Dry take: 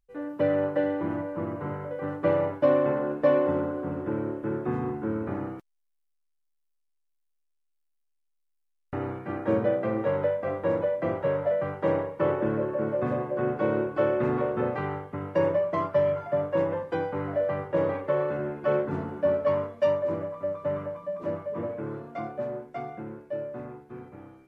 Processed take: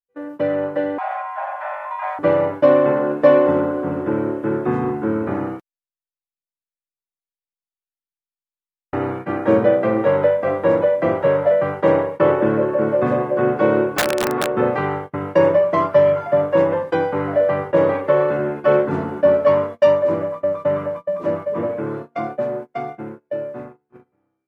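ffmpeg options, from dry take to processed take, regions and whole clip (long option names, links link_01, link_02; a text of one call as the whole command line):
ffmpeg -i in.wav -filter_complex "[0:a]asettb=1/sr,asplit=3[link_01][link_02][link_03];[link_01]atrim=end=0.984[link_04];[link_02]atrim=start=0.98:end=2.19,asetpts=PTS-STARTPTS,afade=type=in:duration=0.004:curve=qsin,afade=type=out:start_time=1.206:duration=0.004:curve=qsin,highpass=120,afreqshift=460[link_05];[link_03]atrim=start=2.186[link_06];[link_04][link_05]acrossfade=duration=0.004:curve1=hsin:curve2=qsin[link_07];[link_07][link_06]acrossfade=duration=0.004:curve1=qsin:curve2=hsin,asettb=1/sr,asplit=3[link_08][link_09][link_10];[link_08]atrim=end=13.974[link_11];[link_09]atrim=start=13.97:end=14.57,asetpts=PTS-STARTPTS,afade=type=in:duration=0.004:curve=qsin,afade=type=out:start_time=0.596:duration=0.004:curve=qsin,bass=frequency=250:gain=-2,treble=frequency=4000:gain=-8,acrossover=split=150|420[link_12][link_13][link_14];[link_12]acompressor=threshold=-47dB:ratio=4[link_15];[link_13]acompressor=threshold=-34dB:ratio=4[link_16];[link_14]acompressor=threshold=-30dB:ratio=4[link_17];[link_15][link_16][link_17]amix=inputs=3:normalize=0,aeval=exprs='(mod(12.6*val(0)+1,2)-1)/12.6':channel_layout=same[link_18];[link_10]atrim=start=14.566[link_19];[link_11][link_18]acrossfade=duration=0.004:curve1=hsin:curve2=qsin[link_20];[link_20][link_19]acrossfade=duration=0.004:curve1=qsin:curve2=hsin,agate=range=-27dB:threshold=-38dB:ratio=16:detection=peak,lowshelf=frequency=100:gain=-10.5,dynaudnorm=framelen=640:gausssize=7:maxgain=6dB,volume=4.5dB" out.wav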